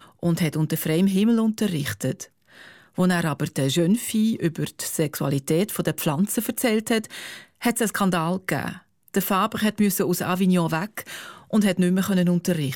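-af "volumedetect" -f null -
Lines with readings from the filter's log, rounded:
mean_volume: -23.2 dB
max_volume: -9.4 dB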